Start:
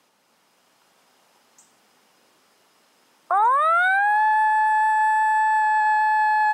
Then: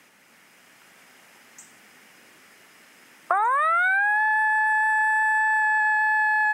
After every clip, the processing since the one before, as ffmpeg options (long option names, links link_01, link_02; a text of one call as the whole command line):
ffmpeg -i in.wav -af "equalizer=frequency=500:width_type=o:width=1:gain=-4,equalizer=frequency=1000:width_type=o:width=1:gain=-7,equalizer=frequency=2000:width_type=o:width=1:gain=9,equalizer=frequency=4000:width_type=o:width=1:gain=-7,acompressor=threshold=-27dB:ratio=12,volume=8.5dB" out.wav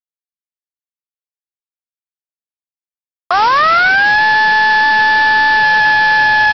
ffmpeg -i in.wav -af "aresample=11025,acrusher=bits=4:mix=0:aa=0.000001,aresample=44100,alimiter=level_in=12dB:limit=-1dB:release=50:level=0:latency=1,volume=-1dB" out.wav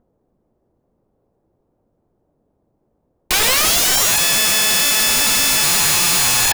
ffmpeg -i in.wav -filter_complex "[0:a]acrossover=split=640[link_01][link_02];[link_01]acompressor=mode=upward:threshold=-35dB:ratio=2.5[link_03];[link_03][link_02]amix=inputs=2:normalize=0,aeval=exprs='(mod(4.22*val(0)+1,2)-1)/4.22':channel_layout=same,volume=2.5dB" out.wav